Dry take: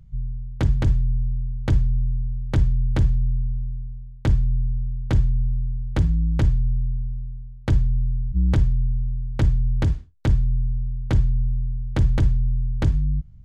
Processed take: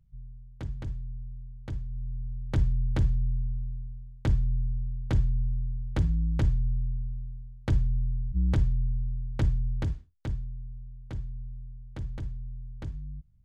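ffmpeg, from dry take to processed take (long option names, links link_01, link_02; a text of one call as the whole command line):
ffmpeg -i in.wav -af "volume=-6dB,afade=type=in:start_time=1.87:duration=0.73:silence=0.316228,afade=type=out:start_time=9.35:duration=1.19:silence=0.281838" out.wav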